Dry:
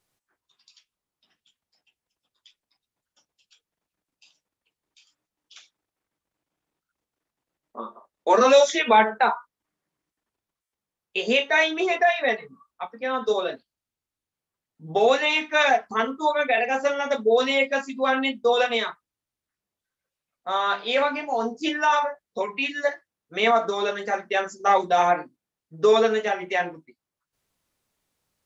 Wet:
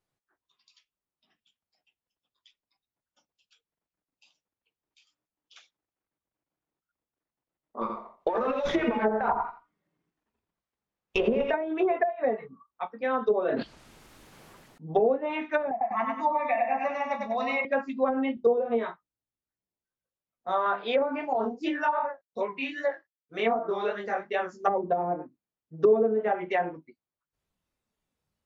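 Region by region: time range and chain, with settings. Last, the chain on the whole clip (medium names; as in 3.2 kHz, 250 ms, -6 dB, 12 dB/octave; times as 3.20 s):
7.81–11.54 s: compressor with a negative ratio -25 dBFS + feedback delay 84 ms, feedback 21%, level -5 dB + sliding maximum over 3 samples
13.43–15.02 s: peaking EQ 85 Hz -12 dB 0.47 oct + decay stretcher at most 23 dB/s
15.71–17.65 s: bass shelf 170 Hz -7.5 dB + static phaser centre 2.2 kHz, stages 8 + feedback delay 97 ms, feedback 37%, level -3.5 dB
18.35–20.66 s: peaking EQ 2 kHz -5.5 dB 2.4 oct + doubling 17 ms -4 dB
21.33–24.65 s: chorus 2.6 Hz, delay 19.5 ms, depth 6.9 ms + companded quantiser 8-bit
whole clip: spectral noise reduction 6 dB; treble shelf 3.2 kHz -11 dB; low-pass that closes with the level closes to 440 Hz, closed at -17.5 dBFS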